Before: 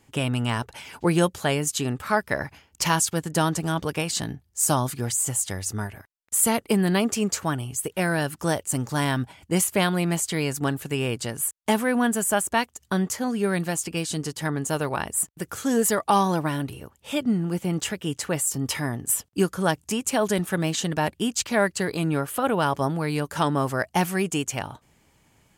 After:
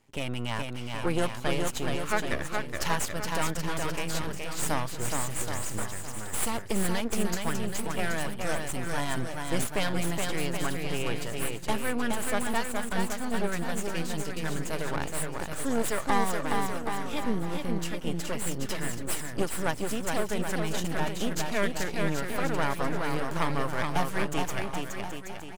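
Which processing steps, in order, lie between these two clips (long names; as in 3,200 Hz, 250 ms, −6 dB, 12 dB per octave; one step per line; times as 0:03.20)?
high-pass filter 61 Hz 12 dB per octave
half-wave rectification
high-shelf EQ 7,000 Hz −5 dB
bouncing-ball delay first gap 420 ms, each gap 0.85×, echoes 5
level −2.5 dB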